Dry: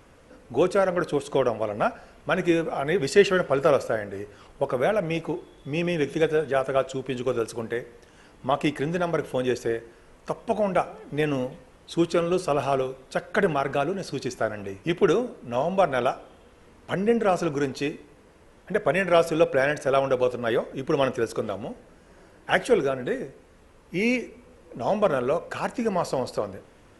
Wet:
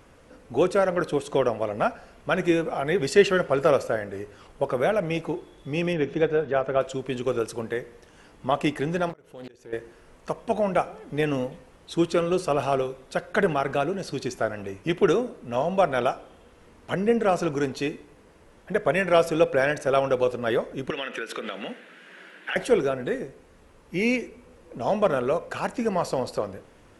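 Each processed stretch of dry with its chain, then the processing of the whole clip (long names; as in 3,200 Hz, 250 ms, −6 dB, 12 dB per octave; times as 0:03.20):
0:05.93–0:06.81: low-pass filter 5,500 Hz + high-shelf EQ 4,300 Hz −11 dB
0:09.09–0:09.73: output level in coarse steps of 11 dB + volume swells 549 ms + highs frequency-modulated by the lows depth 0.53 ms
0:20.90–0:22.56: Butterworth high-pass 180 Hz + flat-topped bell 2,300 Hz +14 dB + downward compressor, threshold −28 dBFS
whole clip: no processing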